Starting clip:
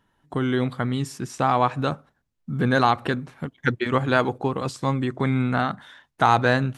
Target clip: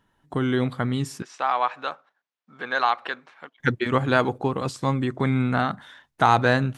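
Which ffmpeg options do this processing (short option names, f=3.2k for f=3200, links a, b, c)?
-filter_complex "[0:a]asettb=1/sr,asplit=3[a][b][c];[a]atrim=end=1.224[d];[b]atrim=start=1.22:end=3.6,asetpts=PTS-STARTPTS,afade=t=in:d=0.004:c=qsin,afade=t=out:st=2.376:d=0.004:c=qsin,highpass=780,lowpass=4.3k[e];[c]atrim=start=3.596[f];[d][e]acrossfade=d=0.004:c1=hsin:c2=qsin[g];[g][f]acrossfade=d=0.004:c1=qsin:c2=hsin"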